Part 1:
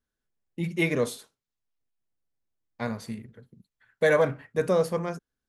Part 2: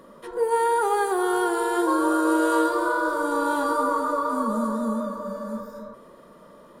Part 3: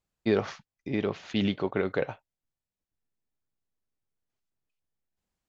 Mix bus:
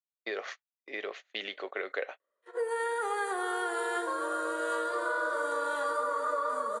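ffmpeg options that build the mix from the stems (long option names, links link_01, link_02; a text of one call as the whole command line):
ffmpeg -i stem1.wav -i stem2.wav -i stem3.wav -filter_complex "[1:a]dynaudnorm=framelen=150:gausssize=5:maxgain=4.5dB,adelay=2200,volume=-4dB[link_01];[2:a]highshelf=frequency=6000:gain=6,volume=-1.5dB[link_02];[link_01][link_02]amix=inputs=2:normalize=0,agate=range=-29dB:threshold=-38dB:ratio=16:detection=peak,acompressor=threshold=-25dB:ratio=6,volume=0dB,highpass=frequency=470:width=0.5412,highpass=frequency=470:width=1.3066,equalizer=frequency=900:width_type=q:width=4:gain=-9,equalizer=frequency=1900:width_type=q:width=4:gain=7,equalizer=frequency=5200:width_type=q:width=4:gain=-7,lowpass=frequency=9300:width=0.5412,lowpass=frequency=9300:width=1.3066" out.wav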